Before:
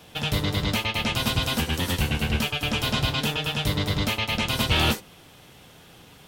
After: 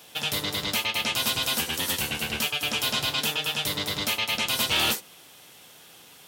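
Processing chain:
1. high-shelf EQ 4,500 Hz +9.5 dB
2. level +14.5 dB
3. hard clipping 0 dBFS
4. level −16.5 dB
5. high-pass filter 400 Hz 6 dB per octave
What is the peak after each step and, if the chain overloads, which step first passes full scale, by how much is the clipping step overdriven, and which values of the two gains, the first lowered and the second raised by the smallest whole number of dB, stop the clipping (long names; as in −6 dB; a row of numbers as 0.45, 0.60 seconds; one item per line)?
−7.5, +7.0, 0.0, −16.5, −13.5 dBFS
step 2, 7.0 dB
step 2 +7.5 dB, step 4 −9.5 dB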